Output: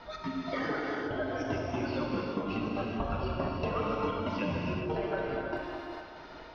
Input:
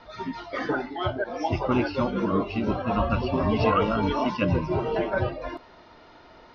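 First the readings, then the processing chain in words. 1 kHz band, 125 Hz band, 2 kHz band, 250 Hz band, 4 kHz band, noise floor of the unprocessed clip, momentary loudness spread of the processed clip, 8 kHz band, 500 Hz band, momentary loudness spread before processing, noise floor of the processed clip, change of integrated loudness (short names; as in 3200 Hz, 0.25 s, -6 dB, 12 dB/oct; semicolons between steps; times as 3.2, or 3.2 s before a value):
-8.0 dB, -8.5 dB, -5.0 dB, -7.0 dB, -6.0 dB, -51 dBFS, 6 LU, n/a, -7.0 dB, 10 LU, -47 dBFS, -7.5 dB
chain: thinning echo 0.153 s, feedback 68%, high-pass 370 Hz, level -15 dB; step gate "xx.x..xx" 190 bpm -24 dB; compressor, threshold -33 dBFS, peak gain reduction 15 dB; non-linear reverb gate 0.45 s flat, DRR -2.5 dB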